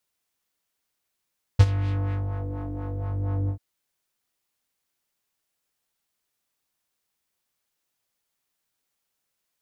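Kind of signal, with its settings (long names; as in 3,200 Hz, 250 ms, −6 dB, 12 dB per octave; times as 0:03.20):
subtractive patch with filter wobble G2, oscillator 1 triangle, oscillator 2 square, interval 0 semitones, sub −14.5 dB, noise −22.5 dB, filter lowpass, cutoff 270 Hz, Q 1.2, filter envelope 4 octaves, filter decay 0.83 s, filter sustain 35%, attack 10 ms, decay 0.05 s, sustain −15 dB, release 0.09 s, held 1.90 s, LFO 4.2 Hz, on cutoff 0.7 octaves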